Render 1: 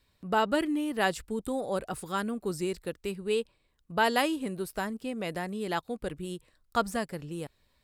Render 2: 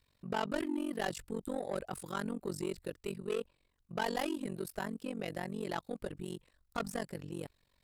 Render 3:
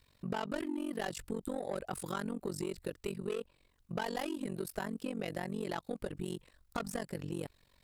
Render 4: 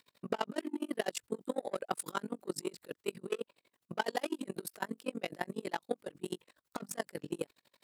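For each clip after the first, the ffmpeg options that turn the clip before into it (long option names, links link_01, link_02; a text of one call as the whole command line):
ffmpeg -i in.wav -af "asoftclip=type=tanh:threshold=-26dB,tremolo=f=46:d=0.974" out.wav
ffmpeg -i in.wav -af "acompressor=threshold=-40dB:ratio=6,volume=6dB" out.wav
ffmpeg -i in.wav -af "highpass=260,aeval=exprs='val(0)*pow(10,-29*(0.5-0.5*cos(2*PI*12*n/s))/20)':channel_layout=same,volume=8dB" out.wav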